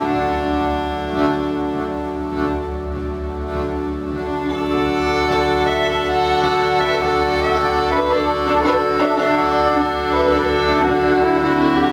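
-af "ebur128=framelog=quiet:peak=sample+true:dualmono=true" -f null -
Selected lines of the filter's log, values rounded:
Integrated loudness:
  I:         -15.1 LUFS
  Threshold: -25.1 LUFS
Loudness range:
  LRA:         6.1 LU
  Threshold: -35.2 LUFS
  LRA low:   -19.4 LUFS
  LRA high:  -13.3 LUFS
Sample peak:
  Peak:       -4.4 dBFS
True peak:
  Peak:       -4.4 dBFS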